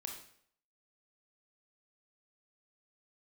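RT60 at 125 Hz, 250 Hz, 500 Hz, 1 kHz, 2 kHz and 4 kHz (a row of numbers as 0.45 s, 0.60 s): 0.60 s, 0.60 s, 0.65 s, 0.60 s, 0.60 s, 0.55 s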